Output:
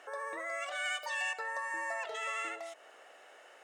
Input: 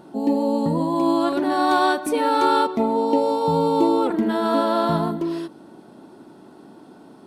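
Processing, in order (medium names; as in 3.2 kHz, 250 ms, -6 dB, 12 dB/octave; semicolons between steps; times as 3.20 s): high-pass 1.4 kHz 6 dB/octave; treble shelf 7.8 kHz -12 dB; compression 1.5:1, threshold -51 dBFS, peak gain reduction 11 dB; distance through air 79 m; speed mistake 7.5 ips tape played at 15 ips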